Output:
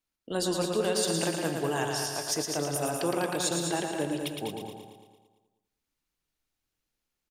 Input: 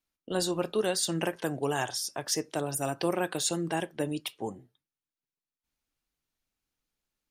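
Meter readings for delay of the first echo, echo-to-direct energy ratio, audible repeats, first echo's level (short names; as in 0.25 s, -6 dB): 0.113 s, -1.0 dB, 7, -5.0 dB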